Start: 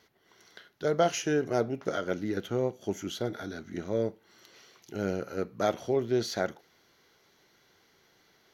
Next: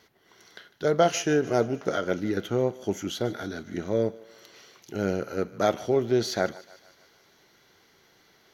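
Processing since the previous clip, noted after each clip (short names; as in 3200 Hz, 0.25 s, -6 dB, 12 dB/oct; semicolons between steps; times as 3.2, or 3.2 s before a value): thinning echo 0.151 s, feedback 62%, high-pass 490 Hz, level -19 dB; gain +4 dB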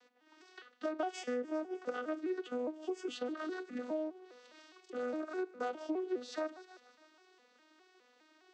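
arpeggiated vocoder major triad, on B3, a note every 0.205 s; bell 160 Hz -14 dB 2.2 oct; compressor 5:1, threshold -37 dBFS, peak gain reduction 14 dB; gain +2.5 dB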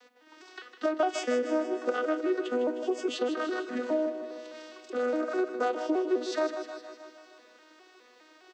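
HPF 210 Hz; on a send: feedback echo 0.156 s, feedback 59%, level -10 dB; on the sum: gain +9 dB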